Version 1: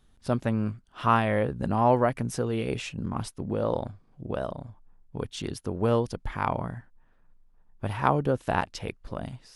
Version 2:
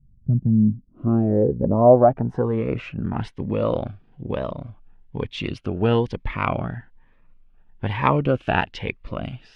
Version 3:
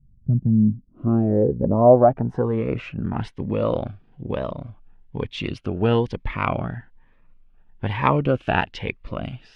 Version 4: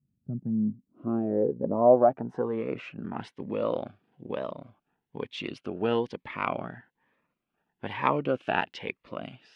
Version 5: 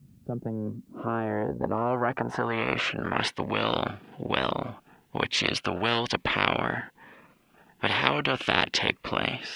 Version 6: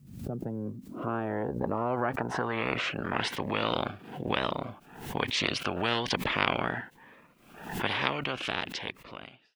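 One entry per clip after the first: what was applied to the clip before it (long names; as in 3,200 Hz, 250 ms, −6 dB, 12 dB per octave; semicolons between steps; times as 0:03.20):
low-pass filter sweep 140 Hz → 2,700 Hz, 0:00.22–0:03.40; phaser whose notches keep moving one way rising 1.1 Hz; level +6 dB
no processing that can be heard
high-pass filter 230 Hz 12 dB per octave; level −5.5 dB
every bin compressed towards the loudest bin 4 to 1; level +5 dB
fade-out on the ending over 1.93 s; background raised ahead of every attack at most 78 dB per second; level −3.5 dB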